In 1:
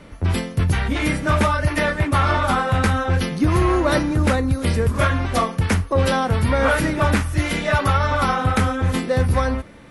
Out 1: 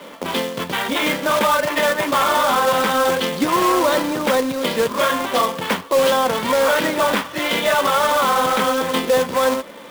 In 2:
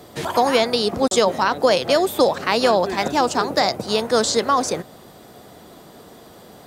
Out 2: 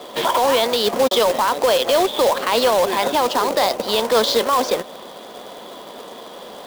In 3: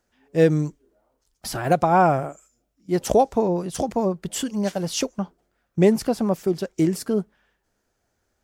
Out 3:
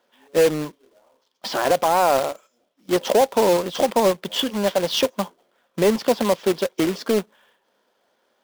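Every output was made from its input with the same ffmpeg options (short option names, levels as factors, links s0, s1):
-filter_complex "[0:a]asplit=2[s0][s1];[s1]acompressor=threshold=0.0447:ratio=10,volume=0.841[s2];[s0][s2]amix=inputs=2:normalize=0,highpass=f=220:w=0.5412,highpass=f=220:w=1.3066,equalizer=f=310:t=q:w=4:g=-4,equalizer=f=540:t=q:w=4:g=7,equalizer=f=1000:t=q:w=4:g=8,equalizer=f=3300:t=q:w=4:g=9,lowpass=f=5000:w=0.5412,lowpass=f=5000:w=1.3066,alimiter=limit=0.355:level=0:latency=1:release=22,acrusher=bits=2:mode=log:mix=0:aa=0.000001"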